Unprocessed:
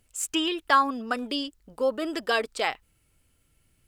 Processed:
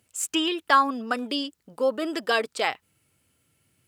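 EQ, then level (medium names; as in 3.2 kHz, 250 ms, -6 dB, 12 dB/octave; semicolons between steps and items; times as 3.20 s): high-pass 94 Hz 24 dB/octave; +1.5 dB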